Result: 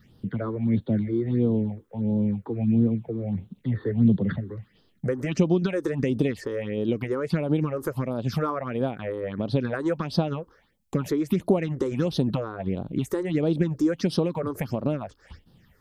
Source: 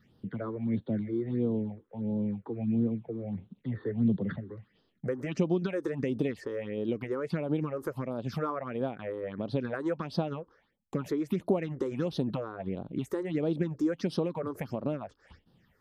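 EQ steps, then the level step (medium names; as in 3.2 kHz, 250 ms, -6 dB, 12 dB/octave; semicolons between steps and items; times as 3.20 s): bass shelf 120 Hz +9 dB; treble shelf 3.8 kHz +7 dB; +4.5 dB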